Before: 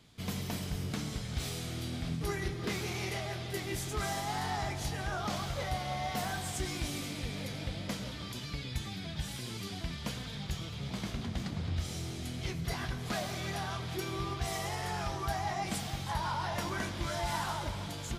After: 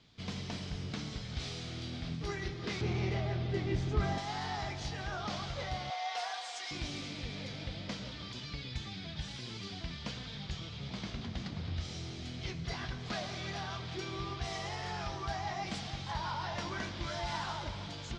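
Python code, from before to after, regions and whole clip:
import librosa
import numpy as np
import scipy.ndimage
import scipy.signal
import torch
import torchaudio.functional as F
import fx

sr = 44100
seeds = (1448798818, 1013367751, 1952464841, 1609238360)

y = fx.chain(x, sr, fx.lowpass(hz=2800.0, slope=6),
    fx.low_shelf(hz=490.0, db=10.5), at=(2.81, 4.18))
y = fx.chain(y, sr, fx.highpass(hz=580.0, slope=24),
    fx.comb(ms=4.2, depth=0.62), at=(5.9, 6.71))
y = scipy.signal.sosfilt(scipy.signal.butter(4, 5400.0, 'lowpass', fs=sr, output='sos'), y)
y = fx.high_shelf(y, sr, hz=3700.0, db=6.5)
y = y * 10.0 ** (-3.5 / 20.0)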